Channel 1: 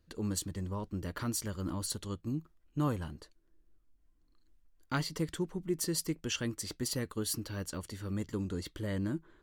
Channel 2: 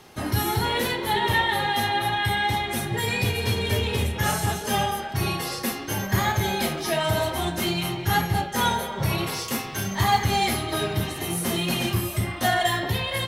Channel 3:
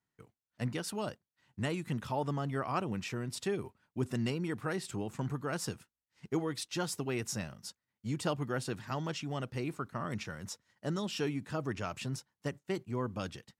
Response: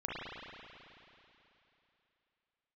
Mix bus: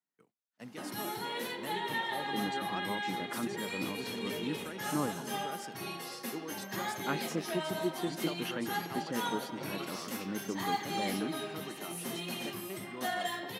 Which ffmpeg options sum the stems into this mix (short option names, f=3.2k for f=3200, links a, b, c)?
-filter_complex "[0:a]lowpass=2.6k,adelay=2150,volume=0dB[a];[1:a]adelay=600,volume=-12.5dB[b];[2:a]volume=-8.5dB[c];[a][b][c]amix=inputs=3:normalize=0,highpass=f=180:w=0.5412,highpass=f=180:w=1.3066"